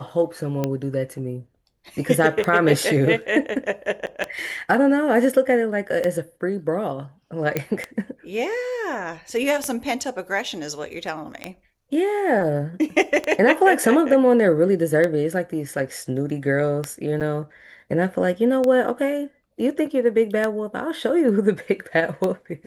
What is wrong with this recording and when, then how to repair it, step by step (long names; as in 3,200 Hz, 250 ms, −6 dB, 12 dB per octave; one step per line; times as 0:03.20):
scratch tick 33 1/3 rpm −10 dBFS
0:04.06–0:04.07: drop-out 8.8 ms
0:07.57: click −8 dBFS
0:17.20–0:17.21: drop-out 7.7 ms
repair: click removal
repair the gap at 0:04.06, 8.8 ms
repair the gap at 0:17.20, 7.7 ms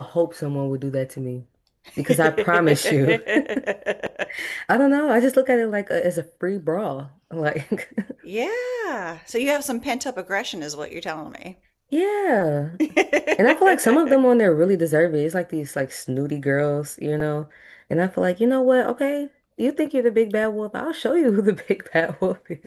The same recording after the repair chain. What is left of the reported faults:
none of them is left